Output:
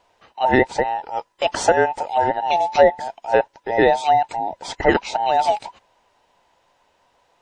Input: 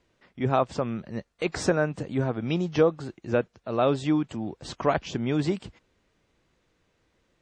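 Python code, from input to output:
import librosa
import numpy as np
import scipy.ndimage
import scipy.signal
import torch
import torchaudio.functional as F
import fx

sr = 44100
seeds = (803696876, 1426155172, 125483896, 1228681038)

y = fx.band_invert(x, sr, width_hz=1000)
y = y * librosa.db_to_amplitude(7.5)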